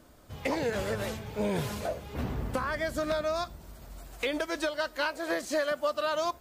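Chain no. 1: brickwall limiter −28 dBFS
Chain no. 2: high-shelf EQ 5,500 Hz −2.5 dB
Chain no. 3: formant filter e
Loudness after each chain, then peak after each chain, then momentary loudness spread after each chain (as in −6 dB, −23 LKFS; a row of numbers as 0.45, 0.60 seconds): −37.5, −32.0, −41.0 LKFS; −28.0, −20.0, −25.0 dBFS; 6, 7, 7 LU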